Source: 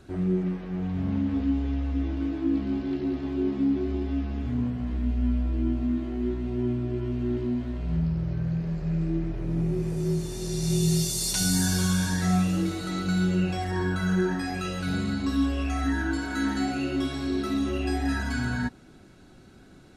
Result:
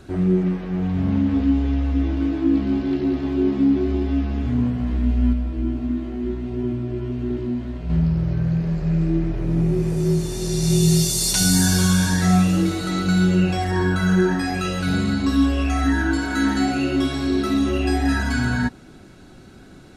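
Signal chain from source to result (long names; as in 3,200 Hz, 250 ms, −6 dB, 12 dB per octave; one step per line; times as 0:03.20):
0:05.33–0:07.90: flanger 1.5 Hz, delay 3 ms, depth 8.8 ms, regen −76%
level +7 dB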